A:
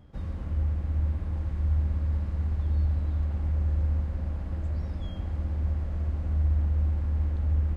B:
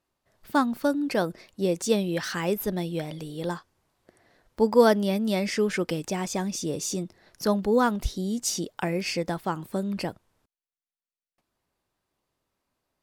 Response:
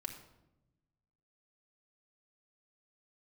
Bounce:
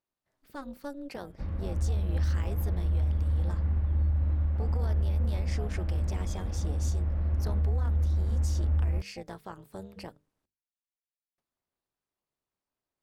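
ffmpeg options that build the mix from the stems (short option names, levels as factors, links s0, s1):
-filter_complex "[0:a]lowpass=2800,adelay=1250,volume=0.794,asplit=2[s0][s1];[s1]volume=0.282[s2];[1:a]bandreject=f=50:t=h:w=6,bandreject=f=100:t=h:w=6,bandreject=f=150:t=h:w=6,bandreject=f=200:t=h:w=6,bandreject=f=250:t=h:w=6,bandreject=f=300:t=h:w=6,alimiter=limit=0.119:level=0:latency=1:release=124,tremolo=f=280:d=0.857,volume=0.376[s3];[2:a]atrim=start_sample=2205[s4];[s2][s4]afir=irnorm=-1:irlink=0[s5];[s0][s3][s5]amix=inputs=3:normalize=0,alimiter=limit=0.1:level=0:latency=1:release=232"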